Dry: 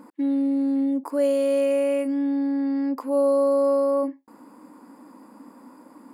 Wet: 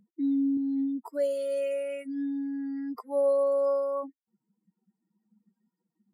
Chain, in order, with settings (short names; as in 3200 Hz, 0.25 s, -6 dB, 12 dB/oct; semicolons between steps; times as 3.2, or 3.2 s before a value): per-bin expansion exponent 3; 0.57–2.95 low shelf 170 Hz -8.5 dB; gain -2 dB